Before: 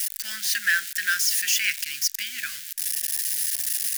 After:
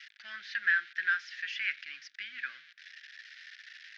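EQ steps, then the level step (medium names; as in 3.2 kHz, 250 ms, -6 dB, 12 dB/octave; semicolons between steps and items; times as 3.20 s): distance through air 260 m; cabinet simulation 460–5100 Hz, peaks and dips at 810 Hz -8 dB, 2.8 kHz -4 dB, 4.7 kHz -3 dB; treble shelf 3.6 kHz -10.5 dB; 0.0 dB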